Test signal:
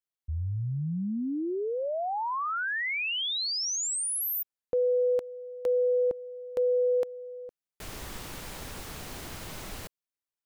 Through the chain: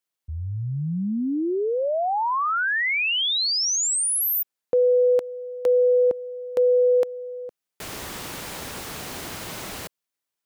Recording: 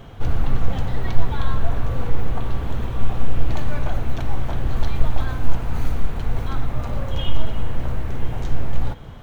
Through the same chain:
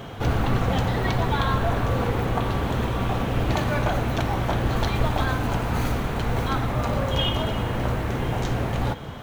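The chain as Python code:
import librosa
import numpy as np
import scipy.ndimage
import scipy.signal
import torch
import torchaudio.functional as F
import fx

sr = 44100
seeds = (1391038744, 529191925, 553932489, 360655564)

y = fx.highpass(x, sr, hz=160.0, slope=6)
y = y * 10.0 ** (7.5 / 20.0)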